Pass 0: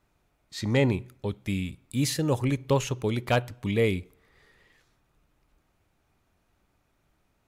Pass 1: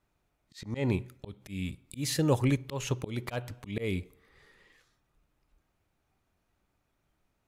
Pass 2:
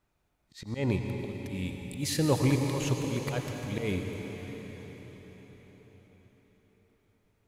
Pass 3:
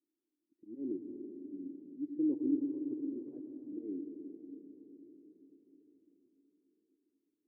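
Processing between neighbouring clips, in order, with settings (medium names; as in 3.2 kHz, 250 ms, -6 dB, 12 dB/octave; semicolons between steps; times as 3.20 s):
slow attack 210 ms; spectral noise reduction 6 dB
reverberation RT60 5.3 s, pre-delay 83 ms, DRR 3 dB
Butterworth band-pass 310 Hz, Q 3.9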